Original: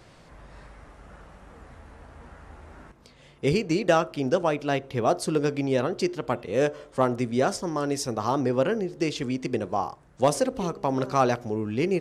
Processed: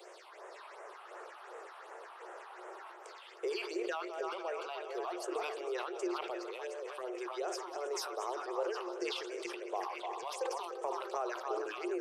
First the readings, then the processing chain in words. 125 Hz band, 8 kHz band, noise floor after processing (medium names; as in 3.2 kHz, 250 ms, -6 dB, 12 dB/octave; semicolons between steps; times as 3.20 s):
under -40 dB, -11.0 dB, -53 dBFS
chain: backward echo that repeats 156 ms, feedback 60%, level -13 dB; Chebyshev high-pass 350 Hz, order 8; compression 3:1, threshold -44 dBFS, peak gain reduction 20 dB; phase shifter stages 6, 2.7 Hz, lowest notch 440–4300 Hz; on a send: repeats whose band climbs or falls 297 ms, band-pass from 1 kHz, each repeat 0.7 oct, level -2 dB; on the sum: decay stretcher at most 40 dB/s; trim +3.5 dB